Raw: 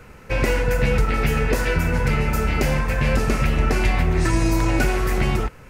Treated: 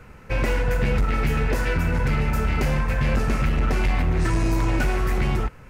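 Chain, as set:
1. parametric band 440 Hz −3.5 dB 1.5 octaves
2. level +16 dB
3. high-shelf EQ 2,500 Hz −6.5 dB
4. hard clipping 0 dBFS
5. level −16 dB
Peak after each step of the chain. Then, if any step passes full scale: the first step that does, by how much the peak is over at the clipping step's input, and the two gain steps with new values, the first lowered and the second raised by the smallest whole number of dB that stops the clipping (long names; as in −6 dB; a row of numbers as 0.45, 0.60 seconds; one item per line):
−7.0, +9.0, +8.0, 0.0, −16.0 dBFS
step 2, 8.0 dB
step 2 +8 dB, step 5 −8 dB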